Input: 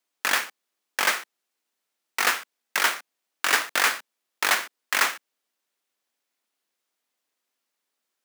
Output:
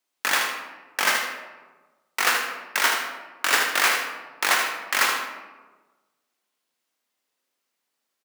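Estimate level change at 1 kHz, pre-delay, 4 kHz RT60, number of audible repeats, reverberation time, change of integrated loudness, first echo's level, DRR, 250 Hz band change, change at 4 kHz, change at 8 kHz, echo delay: +2.5 dB, 19 ms, 0.70 s, 1, 1.3 s, +1.5 dB, -6.5 dB, 1.5 dB, +2.5 dB, +2.0 dB, +1.5 dB, 77 ms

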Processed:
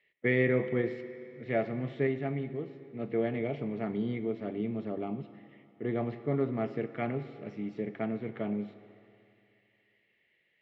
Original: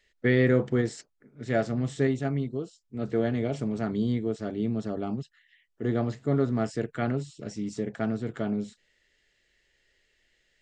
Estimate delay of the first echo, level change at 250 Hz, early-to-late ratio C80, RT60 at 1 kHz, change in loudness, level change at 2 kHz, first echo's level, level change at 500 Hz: no echo, -5.0 dB, 13.0 dB, 2.6 s, -4.5 dB, -2.0 dB, no echo, -3.0 dB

